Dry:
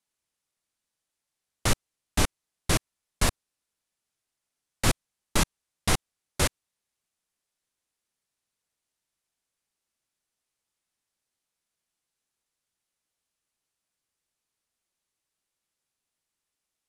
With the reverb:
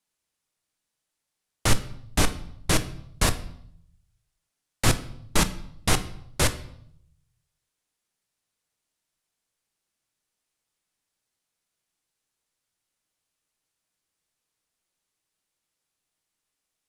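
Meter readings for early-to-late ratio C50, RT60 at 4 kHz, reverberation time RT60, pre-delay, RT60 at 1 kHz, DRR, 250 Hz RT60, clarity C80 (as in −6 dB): 15.0 dB, 0.60 s, 0.70 s, 6 ms, 0.70 s, 10.0 dB, 0.90 s, 18.0 dB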